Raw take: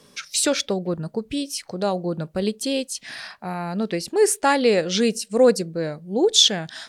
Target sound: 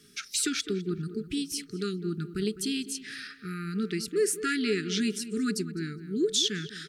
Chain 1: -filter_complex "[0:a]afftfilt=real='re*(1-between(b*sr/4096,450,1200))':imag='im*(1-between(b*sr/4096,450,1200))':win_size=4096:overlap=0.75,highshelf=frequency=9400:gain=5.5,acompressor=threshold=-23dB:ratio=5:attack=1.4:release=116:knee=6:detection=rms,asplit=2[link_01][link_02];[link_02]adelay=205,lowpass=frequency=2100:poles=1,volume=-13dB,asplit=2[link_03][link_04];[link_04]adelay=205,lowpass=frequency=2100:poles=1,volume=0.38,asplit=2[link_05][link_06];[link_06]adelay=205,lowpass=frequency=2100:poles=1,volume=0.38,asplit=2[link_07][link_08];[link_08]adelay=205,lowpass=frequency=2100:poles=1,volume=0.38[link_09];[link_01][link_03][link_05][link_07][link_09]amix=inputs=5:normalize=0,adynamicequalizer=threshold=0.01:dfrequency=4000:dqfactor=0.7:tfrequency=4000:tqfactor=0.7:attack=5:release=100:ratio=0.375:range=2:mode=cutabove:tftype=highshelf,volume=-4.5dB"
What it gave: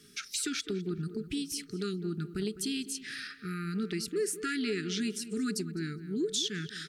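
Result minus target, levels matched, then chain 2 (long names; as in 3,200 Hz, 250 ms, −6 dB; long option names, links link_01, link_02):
downward compressor: peak gain reduction +6.5 dB
-filter_complex "[0:a]afftfilt=real='re*(1-between(b*sr/4096,450,1200))':imag='im*(1-between(b*sr/4096,450,1200))':win_size=4096:overlap=0.75,highshelf=frequency=9400:gain=5.5,acompressor=threshold=-15dB:ratio=5:attack=1.4:release=116:knee=6:detection=rms,asplit=2[link_01][link_02];[link_02]adelay=205,lowpass=frequency=2100:poles=1,volume=-13dB,asplit=2[link_03][link_04];[link_04]adelay=205,lowpass=frequency=2100:poles=1,volume=0.38,asplit=2[link_05][link_06];[link_06]adelay=205,lowpass=frequency=2100:poles=1,volume=0.38,asplit=2[link_07][link_08];[link_08]adelay=205,lowpass=frequency=2100:poles=1,volume=0.38[link_09];[link_01][link_03][link_05][link_07][link_09]amix=inputs=5:normalize=0,adynamicequalizer=threshold=0.01:dfrequency=4000:dqfactor=0.7:tfrequency=4000:tqfactor=0.7:attack=5:release=100:ratio=0.375:range=2:mode=cutabove:tftype=highshelf,volume=-4.5dB"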